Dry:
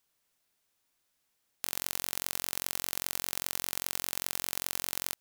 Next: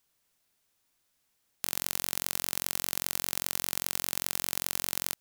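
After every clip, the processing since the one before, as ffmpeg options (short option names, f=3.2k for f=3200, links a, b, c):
-af "bass=f=250:g=3,treble=f=4k:g=1,volume=1.5dB"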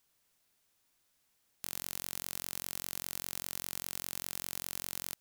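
-af "asoftclip=type=tanh:threshold=-10.5dB"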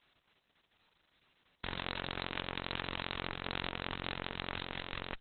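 -af "volume=9.5dB" -ar 48000 -c:a libopus -b:a 6k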